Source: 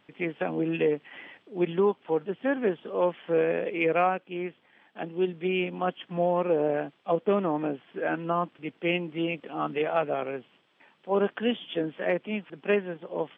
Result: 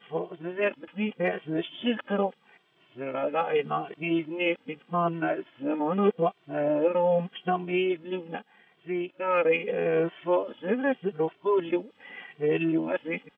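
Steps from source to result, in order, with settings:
played backwards from end to start
barber-pole flanger 2.1 ms −0.82 Hz
level +3.5 dB

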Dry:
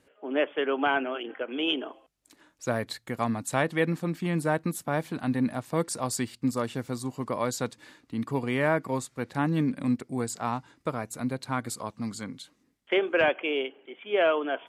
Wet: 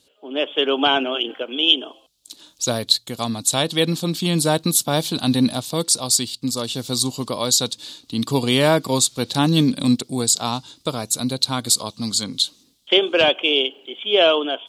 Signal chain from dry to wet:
high shelf with overshoot 2,700 Hz +11.5 dB, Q 3
automatic gain control gain up to 11.5 dB
level −1 dB

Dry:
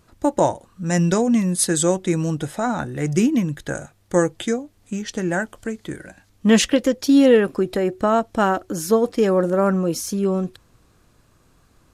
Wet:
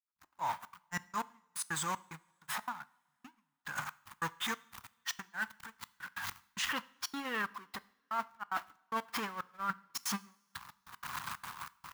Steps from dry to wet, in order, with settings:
converter with a step at zero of −20.5 dBFS
high-pass filter 73 Hz 6 dB per octave
RIAA equalisation recording
noise gate −14 dBFS, range −58 dB
drawn EQ curve 170 Hz 0 dB, 360 Hz −16 dB, 560 Hz −18 dB, 990 Hz +8 dB, 8,400 Hz −20 dB
reversed playback
downward compressor 10 to 1, threshold −33 dBFS, peak gain reduction 21.5 dB
reversed playback
gate pattern "..x.xxxx.xxx" 185 BPM −60 dB
convolution reverb, pre-delay 3 ms, DRR 17 dB

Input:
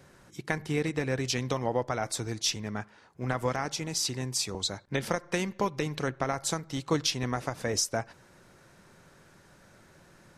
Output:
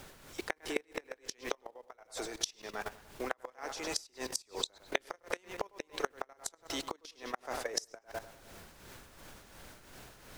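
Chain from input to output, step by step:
high-pass filter 350 Hz 24 dB per octave
background noise pink −54 dBFS
feedback echo with a low-pass in the loop 100 ms, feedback 54%, low-pass 4,200 Hz, level −10.5 dB
output level in coarse steps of 15 dB
gate with flip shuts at −24 dBFS, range −28 dB
amplitude tremolo 2.8 Hz, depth 55%
level +9 dB

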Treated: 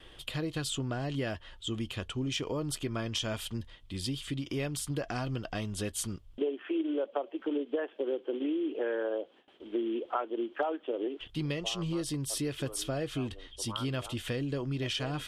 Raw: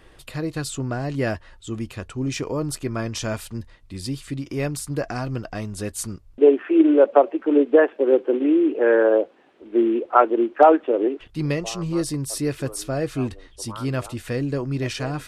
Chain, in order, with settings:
parametric band 3,200 Hz +14.5 dB 0.37 octaves
noise gate with hold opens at −44 dBFS
downward compressor 6 to 1, threshold −26 dBFS, peak gain reduction 17 dB
level −4 dB

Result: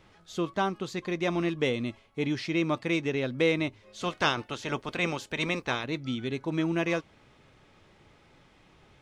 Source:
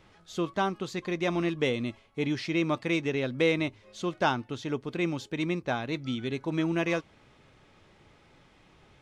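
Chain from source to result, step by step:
0:04.00–0:05.83: ceiling on every frequency bin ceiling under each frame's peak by 16 dB

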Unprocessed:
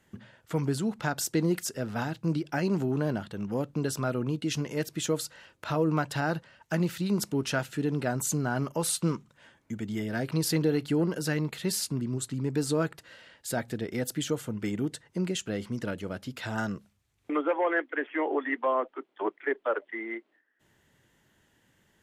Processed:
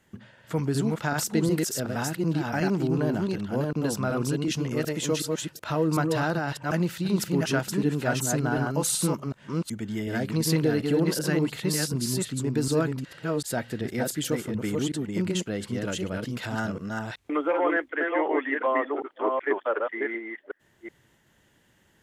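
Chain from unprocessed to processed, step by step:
delay that plays each chunk backwards 373 ms, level −2.5 dB
level +1.5 dB

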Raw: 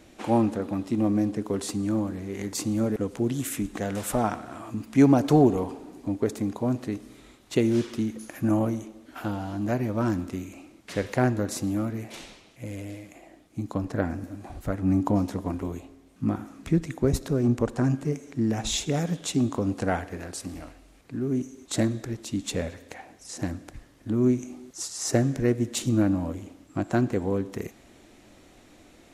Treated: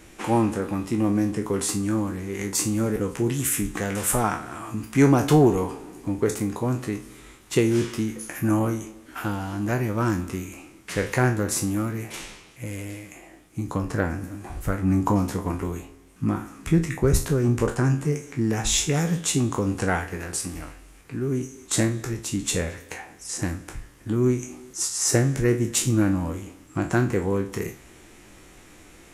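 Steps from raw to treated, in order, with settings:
peak hold with a decay on every bin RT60 0.31 s
graphic EQ with 15 bands 100 Hz −3 dB, 250 Hz −8 dB, 630 Hz −9 dB, 4,000 Hz −6 dB, 10,000 Hz +3 dB
in parallel at −11 dB: soft clipping −19.5 dBFS, distortion −16 dB
on the sum: level +4.5 dB

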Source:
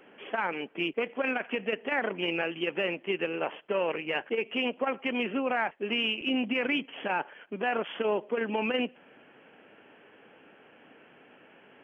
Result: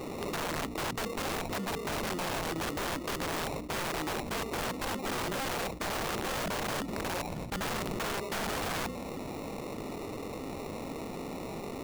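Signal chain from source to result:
sample-rate reduction 1,600 Hz, jitter 0%
parametric band 240 Hz +5.5 dB 2.2 octaves
brickwall limiter −20 dBFS, peak gain reduction 7 dB
wrap-around overflow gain 29.5 dB
mains-hum notches 60/120/180/240/300 Hz
envelope flattener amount 70%

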